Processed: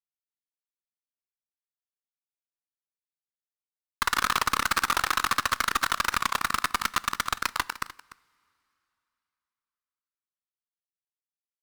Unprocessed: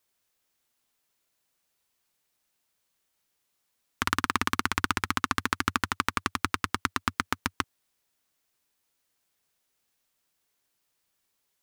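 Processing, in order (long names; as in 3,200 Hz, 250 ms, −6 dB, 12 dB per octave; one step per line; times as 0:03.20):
delay that plays each chunk backwards 133 ms, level −11.5 dB
high-pass filter 840 Hz 12 dB per octave
fuzz pedal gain 39 dB, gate −44 dBFS
single-tap delay 295 ms −17 dB
on a send at −19 dB: convolution reverb, pre-delay 3 ms
on the sum: wow of a warped record 45 rpm, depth 100 cents
level −4 dB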